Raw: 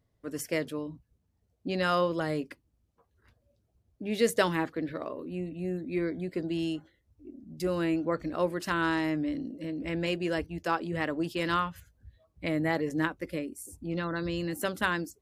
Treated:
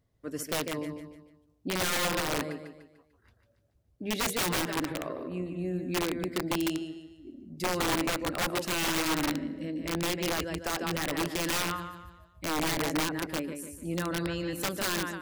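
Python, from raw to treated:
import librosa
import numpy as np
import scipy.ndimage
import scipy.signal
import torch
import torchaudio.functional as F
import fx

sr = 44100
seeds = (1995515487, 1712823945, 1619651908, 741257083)

p1 = x + fx.echo_feedback(x, sr, ms=148, feedback_pct=40, wet_db=-7, dry=0)
y = (np.mod(10.0 ** (23.0 / 20.0) * p1 + 1.0, 2.0) - 1.0) / 10.0 ** (23.0 / 20.0)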